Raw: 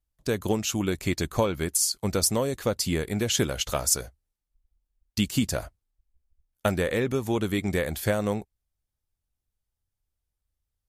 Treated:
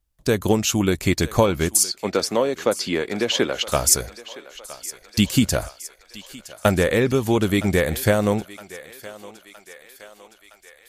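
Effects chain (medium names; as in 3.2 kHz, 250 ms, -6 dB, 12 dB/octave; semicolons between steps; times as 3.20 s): 1.83–3.72 s: three-band isolator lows -20 dB, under 230 Hz, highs -19 dB, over 4.9 kHz; thinning echo 965 ms, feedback 65%, high-pass 540 Hz, level -16 dB; trim +7 dB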